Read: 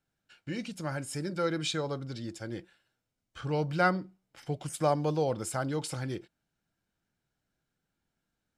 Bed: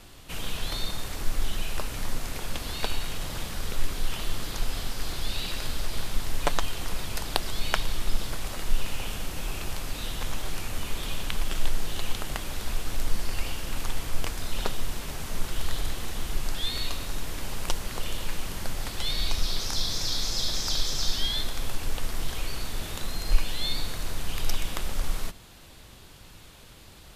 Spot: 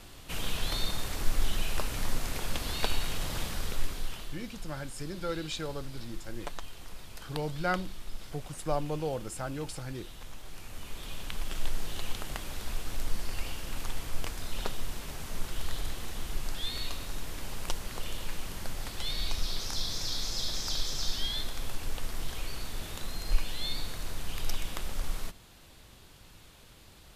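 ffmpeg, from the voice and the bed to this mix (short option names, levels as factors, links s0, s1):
-filter_complex "[0:a]adelay=3850,volume=0.596[s0];[1:a]volume=2.66,afade=t=out:st=3.44:d=0.93:silence=0.211349,afade=t=in:st=10.44:d=1.35:silence=0.354813[s1];[s0][s1]amix=inputs=2:normalize=0"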